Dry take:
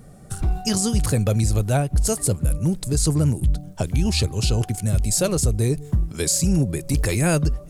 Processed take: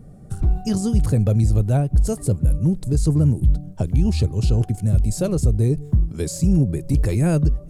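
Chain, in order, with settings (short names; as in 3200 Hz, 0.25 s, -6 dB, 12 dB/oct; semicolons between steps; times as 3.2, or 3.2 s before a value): tilt shelf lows +7 dB, about 710 Hz; gain -3.5 dB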